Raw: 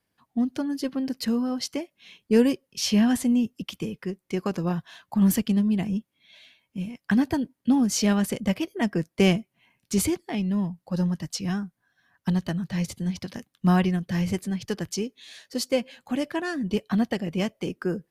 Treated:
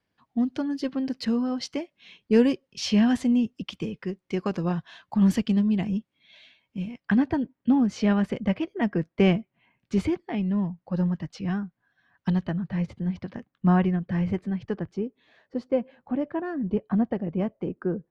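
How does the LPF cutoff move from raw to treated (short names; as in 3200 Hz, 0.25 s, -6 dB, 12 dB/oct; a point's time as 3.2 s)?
6.78 s 4700 Hz
7.28 s 2400 Hz
11.52 s 2400 Hz
12.29 s 4000 Hz
12.54 s 1800 Hz
14.57 s 1800 Hz
14.98 s 1100 Hz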